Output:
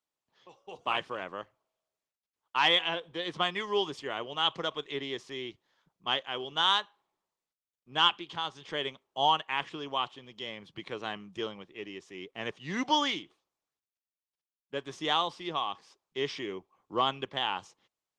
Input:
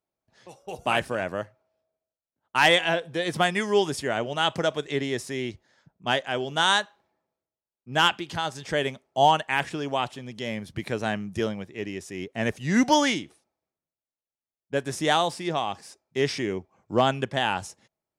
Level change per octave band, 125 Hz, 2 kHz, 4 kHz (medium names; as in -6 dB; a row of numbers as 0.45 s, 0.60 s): -14.0 dB, -8.0 dB, -1.5 dB